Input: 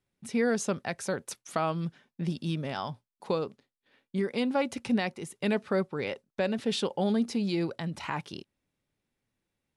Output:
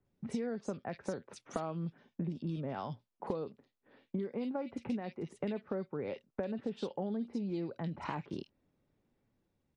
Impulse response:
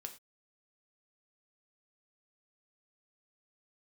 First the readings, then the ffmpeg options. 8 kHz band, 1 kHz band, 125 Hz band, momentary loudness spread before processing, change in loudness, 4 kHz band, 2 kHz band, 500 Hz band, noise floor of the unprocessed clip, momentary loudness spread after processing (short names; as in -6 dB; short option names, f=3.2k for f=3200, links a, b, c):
under -15 dB, -8.5 dB, -6.0 dB, 9 LU, -8.5 dB, -16.5 dB, -14.5 dB, -8.0 dB, under -85 dBFS, 6 LU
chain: -filter_complex "[0:a]lowpass=6.6k,acrossover=split=200|2700[a][b][c];[b]dynaudnorm=f=110:g=9:m=3.5dB[d];[a][d][c]amix=inputs=3:normalize=0,tiltshelf=f=1.1k:g=5.5,acompressor=threshold=-36dB:ratio=6,acrossover=split=2300[e][f];[f]adelay=50[g];[e][g]amix=inputs=2:normalize=0,volume=1dB" -ar 48000 -c:a libmp3lame -b:a 48k